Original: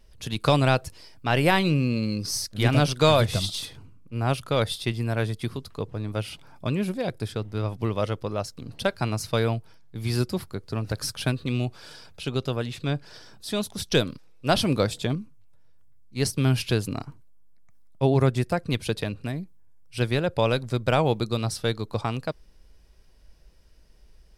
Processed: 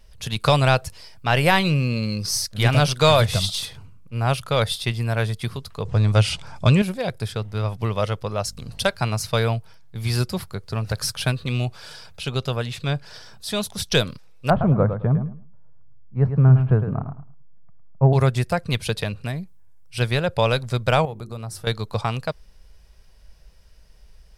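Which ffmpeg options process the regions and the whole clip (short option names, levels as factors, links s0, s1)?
-filter_complex "[0:a]asettb=1/sr,asplit=3[s0][s1][s2];[s0]atrim=end=5.854[s3];[s1]atrim=start=5.85:end=6.82,asetpts=PTS-STARTPTS,afade=t=in:d=0.004:c=qsin,afade=t=out:st=0.966:d=0.004:c=qsin,equalizer=f=68:t=o:w=1.9:g=6,acontrast=69,lowpass=f=7500:t=q:w=1.6[s4];[s2]atrim=start=6.816[s5];[s3][s4]acrossfade=d=0.004:c1=hsin:c2=qsin[s6];[s6][s5]acrossfade=d=0.004:c1=qsin:c2=hsin,asettb=1/sr,asplit=3[s7][s8][s9];[s7]atrim=end=8.454[s10];[s8]atrim=start=8.45:end=8.9,asetpts=PTS-STARTPTS,afade=t=in:d=0.004:c=qsin,afade=t=out:st=0.446:d=0.004:c=qsin,equalizer=f=8500:w=0.51:g=6.5,aeval=exprs='val(0)+0.00447*(sin(2*PI*50*n/s)+sin(2*PI*2*50*n/s)/2+sin(2*PI*3*50*n/s)/3+sin(2*PI*4*50*n/s)/4+sin(2*PI*5*50*n/s)/5)':c=same[s11];[s9]atrim=start=8.896[s12];[s10][s11]acrossfade=d=0.004:c1=hsin:c2=qsin[s13];[s13][s12]acrossfade=d=0.004:c1=qsin:c2=hsin,asettb=1/sr,asplit=3[s14][s15][s16];[s14]atrim=end=14.504[s17];[s15]atrim=start=14.5:end=18.13,asetpts=PTS-STARTPTS,afade=t=in:d=0.004:c=qsin,afade=t=out:st=3.626:d=0.004:c=qsin,lowpass=f=1300:w=0.5412,lowpass=f=1300:w=1.3066,equalizer=f=150:t=o:w=0.82:g=7,aecho=1:1:107|214|321:0.355|0.071|0.0142,atrim=end_sample=160083[s18];[s16]atrim=start=18.126[s19];[s17][s18]acrossfade=d=0.004:c1=hsin:c2=qsin[s20];[s20][s19]acrossfade=d=0.004:c1=qsin:c2=hsin,asettb=1/sr,asplit=3[s21][s22][s23];[s21]atrim=end=21.054[s24];[s22]atrim=start=21.05:end=21.67,asetpts=PTS-STARTPTS,afade=t=in:d=0.004:c=qsin,afade=t=out:st=0.616:d=0.004:c=qsin,equalizer=f=3700:w=0.79:g=-11.5,bandreject=f=50:t=h:w=6,bandreject=f=100:t=h:w=6,bandreject=f=150:t=h:w=6,bandreject=f=200:t=h:w=6,bandreject=f=250:t=h:w=6,bandreject=f=300:t=h:w=6,bandreject=f=350:t=h:w=6,bandreject=f=400:t=h:w=6,acompressor=threshold=0.02:ratio=3:attack=3.2:release=140:knee=1:detection=peak[s25];[s23]atrim=start=21.666[s26];[s24][s25]acrossfade=d=0.004:c1=hsin:c2=qsin[s27];[s27][s26]acrossfade=d=0.004:c1=qsin:c2=hsin,equalizer=f=300:t=o:w=0.81:g=-10.5,acontrast=24"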